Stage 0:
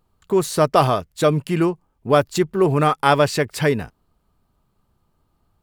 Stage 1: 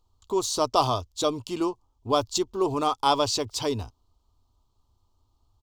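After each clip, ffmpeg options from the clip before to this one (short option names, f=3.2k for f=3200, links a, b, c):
-af "firequalizer=gain_entry='entry(110,0);entry(150,-24);entry(250,-6);entry(540,-10);entry(1000,-1);entry(1700,-23);entry(3300,0);entry(6300,4);entry(9800,-10);entry(15000,-8)':delay=0.05:min_phase=1"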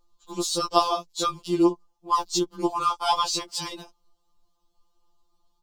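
-af "afftfilt=real='re*2.83*eq(mod(b,8),0)':imag='im*2.83*eq(mod(b,8),0)':win_size=2048:overlap=0.75,volume=3.5dB"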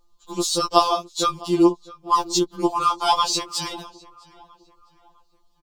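-filter_complex "[0:a]asplit=2[a][b];[b]adelay=655,lowpass=f=2.9k:p=1,volume=-21.5dB,asplit=2[c][d];[d]adelay=655,lowpass=f=2.9k:p=1,volume=0.42,asplit=2[e][f];[f]adelay=655,lowpass=f=2.9k:p=1,volume=0.42[g];[a][c][e][g]amix=inputs=4:normalize=0,volume=4dB"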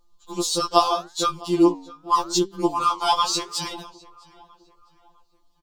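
-af "flanger=delay=5.1:depth=5.9:regen=89:speed=0.8:shape=sinusoidal,volume=3.5dB"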